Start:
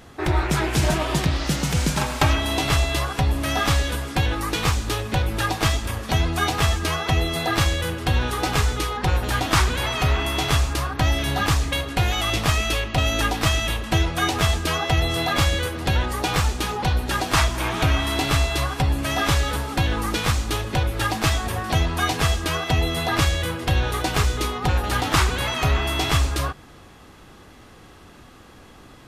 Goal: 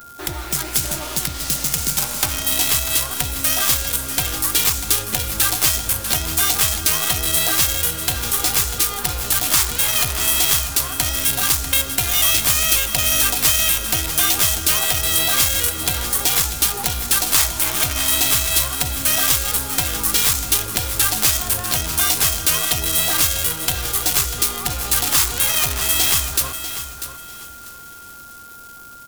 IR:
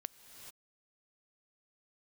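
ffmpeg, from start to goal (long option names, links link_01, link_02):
-filter_complex "[0:a]highshelf=frequency=6600:gain=5,bandreject=frequency=302:width_type=h:width=4,bandreject=frequency=604:width_type=h:width=4,bandreject=frequency=906:width_type=h:width=4,bandreject=frequency=1208:width_type=h:width=4,bandreject=frequency=1510:width_type=h:width=4,bandreject=frequency=1812:width_type=h:width=4,bandreject=frequency=2114:width_type=h:width=4,bandreject=frequency=2416:width_type=h:width=4,bandreject=frequency=2718:width_type=h:width=4,bandreject=frequency=3020:width_type=h:width=4,bandreject=frequency=3322:width_type=h:width=4,bandreject=frequency=3624:width_type=h:width=4,bandreject=frequency=3926:width_type=h:width=4,bandreject=frequency=4228:width_type=h:width=4,bandreject=frequency=4530:width_type=h:width=4,bandreject=frequency=4832:width_type=h:width=4,bandreject=frequency=5134:width_type=h:width=4,bandreject=frequency=5436:width_type=h:width=4,bandreject=frequency=5738:width_type=h:width=4,bandreject=frequency=6040:width_type=h:width=4,bandreject=frequency=6342:width_type=h:width=4,bandreject=frequency=6644:width_type=h:width=4,bandreject=frequency=6946:width_type=h:width=4,bandreject=frequency=7248:width_type=h:width=4,dynaudnorm=framelen=740:gausssize=7:maxgain=15.5dB,asplit=2[link_01][link_02];[link_02]alimiter=limit=-8.5dB:level=0:latency=1:release=11,volume=-0.5dB[link_03];[link_01][link_03]amix=inputs=2:normalize=0,acompressor=threshold=-17dB:ratio=2,acrossover=split=100|1200[link_04][link_05][link_06];[link_06]acrusher=bits=4:dc=4:mix=0:aa=0.000001[link_07];[link_04][link_05][link_07]amix=inputs=3:normalize=0,asetrate=42845,aresample=44100,atempo=1.0293,aecho=1:1:644|1288|1932:0.282|0.0705|0.0176,crystalizer=i=7:c=0,aeval=exprs='val(0)+0.0447*sin(2*PI*1400*n/s)':channel_layout=same,volume=-12dB"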